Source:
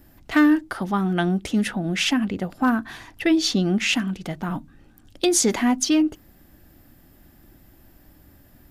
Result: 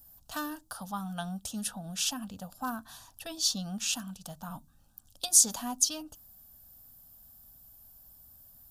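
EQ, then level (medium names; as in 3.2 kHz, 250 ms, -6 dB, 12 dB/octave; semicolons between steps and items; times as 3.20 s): pre-emphasis filter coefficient 0.8; static phaser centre 870 Hz, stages 4; +2.5 dB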